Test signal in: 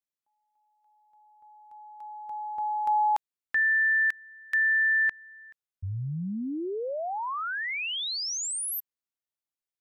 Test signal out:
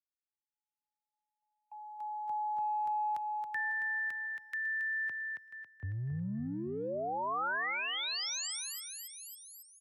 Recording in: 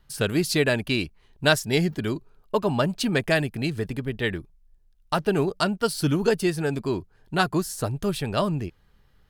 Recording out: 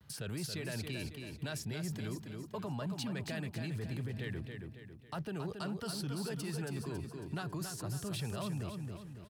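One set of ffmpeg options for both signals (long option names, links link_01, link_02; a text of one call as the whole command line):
ffmpeg -i in.wav -filter_complex "[0:a]lowshelf=frequency=150:gain=9.5,areverse,acompressor=threshold=-29dB:ratio=6:attack=2.9:release=26:knee=1:detection=rms,areverse,agate=range=-34dB:threshold=-50dB:ratio=16:release=218:detection=rms,alimiter=level_in=5.5dB:limit=-24dB:level=0:latency=1:release=273,volume=-5.5dB,highpass=frequency=82:width=0.5412,highpass=frequency=82:width=1.3066,asplit=2[link_01][link_02];[link_02]aecho=0:1:275|550|825|1100|1375:0.473|0.213|0.0958|0.0431|0.0194[link_03];[link_01][link_03]amix=inputs=2:normalize=0,acrossover=split=210|560|1300|5600[link_04][link_05][link_06][link_07][link_08];[link_04]acompressor=threshold=-37dB:ratio=4[link_09];[link_05]acompressor=threshold=-46dB:ratio=4[link_10];[link_06]acompressor=threshold=-37dB:ratio=4[link_11];[link_07]acompressor=threshold=-37dB:ratio=4[link_12];[link_08]acompressor=threshold=-47dB:ratio=4[link_13];[link_09][link_10][link_11][link_12][link_13]amix=inputs=5:normalize=0" out.wav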